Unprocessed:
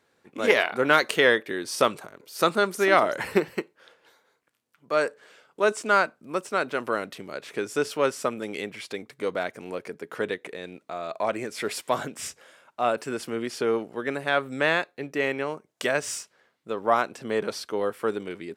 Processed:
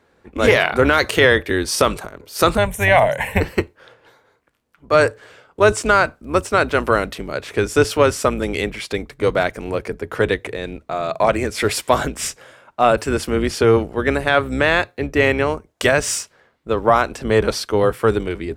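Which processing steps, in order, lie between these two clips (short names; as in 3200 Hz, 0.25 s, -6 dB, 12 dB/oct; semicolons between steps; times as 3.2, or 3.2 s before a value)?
octaver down 2 oct, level -3 dB; 2.57–3.41 fixed phaser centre 1300 Hz, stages 6; maximiser +11.5 dB; mismatched tape noise reduction decoder only; gain -1 dB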